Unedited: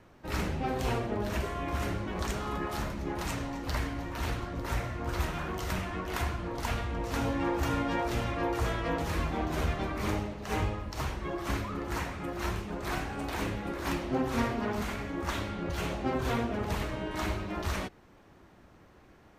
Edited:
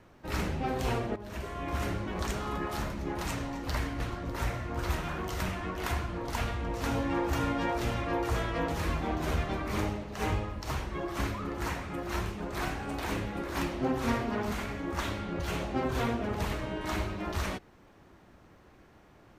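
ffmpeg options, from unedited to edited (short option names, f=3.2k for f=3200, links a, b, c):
-filter_complex "[0:a]asplit=3[a][b][c];[a]atrim=end=1.16,asetpts=PTS-STARTPTS,afade=t=out:st=1.156:d=0.004:c=hsin:silence=0.188365[d];[b]atrim=start=1.16:end=4.002,asetpts=PTS-STARTPTS,afade=t=in:d=0.6:silence=0.188365[e];[c]atrim=start=4.298[f];[d][e]concat=n=2:v=0:a=1[g];[g][f]acrossfade=d=0.004:c1=hsin:c2=hsin"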